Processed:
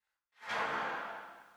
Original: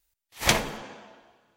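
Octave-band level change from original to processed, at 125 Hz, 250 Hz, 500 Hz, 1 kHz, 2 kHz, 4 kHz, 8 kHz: -23.0 dB, -16.0 dB, -10.0 dB, -4.0 dB, -7.0 dB, -17.5 dB, -28.0 dB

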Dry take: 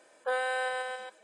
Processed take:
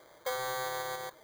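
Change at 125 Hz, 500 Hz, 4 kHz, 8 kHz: no reading, -4.0 dB, +1.0 dB, +6.0 dB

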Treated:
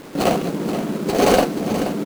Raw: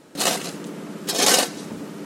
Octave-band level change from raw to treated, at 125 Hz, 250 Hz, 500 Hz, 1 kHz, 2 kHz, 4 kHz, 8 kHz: +11.0 dB, +10.5 dB, +9.0 dB, +6.0 dB, -1.0 dB, -7.0 dB, -10.5 dB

